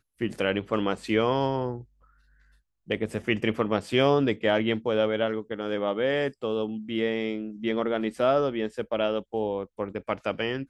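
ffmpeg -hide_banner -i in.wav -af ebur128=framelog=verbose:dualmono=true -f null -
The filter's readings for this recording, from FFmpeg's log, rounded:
Integrated loudness:
  I:         -24.2 LUFS
  Threshold: -34.6 LUFS
Loudness range:
  LRA:         3.1 LU
  Threshold: -44.3 LUFS
  LRA low:   -25.9 LUFS
  LRA high:  -22.8 LUFS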